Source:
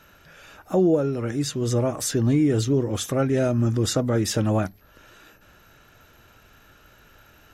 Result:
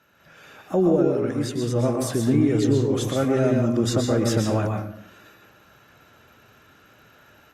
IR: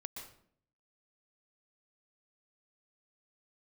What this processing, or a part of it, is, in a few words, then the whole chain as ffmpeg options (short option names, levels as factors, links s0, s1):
far-field microphone of a smart speaker: -filter_complex "[0:a]highshelf=f=4200:g=-4.5[s0];[1:a]atrim=start_sample=2205[s1];[s0][s1]afir=irnorm=-1:irlink=0,highpass=120,dynaudnorm=f=150:g=3:m=2.24,volume=0.75" -ar 48000 -c:a libopus -b:a 48k